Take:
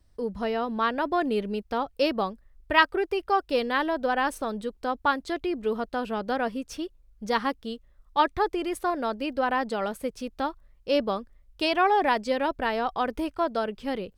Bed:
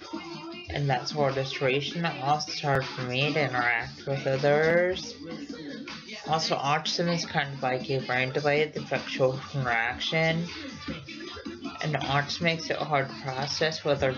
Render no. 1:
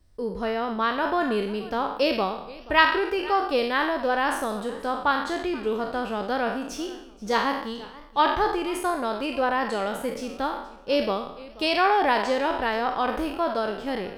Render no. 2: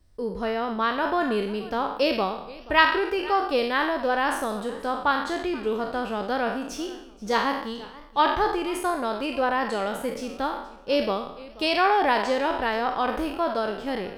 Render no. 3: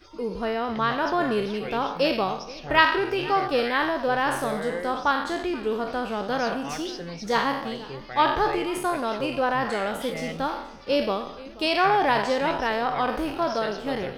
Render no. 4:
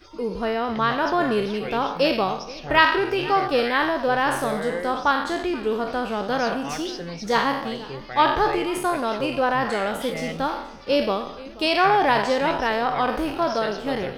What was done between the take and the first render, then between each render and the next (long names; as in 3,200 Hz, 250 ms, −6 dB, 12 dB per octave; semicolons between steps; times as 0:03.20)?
peak hold with a decay on every bin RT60 0.69 s; feedback echo with a swinging delay time 479 ms, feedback 36%, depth 141 cents, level −20 dB
no processing that can be heard
mix in bed −10 dB
level +2.5 dB; brickwall limiter −2 dBFS, peak gain reduction 1.5 dB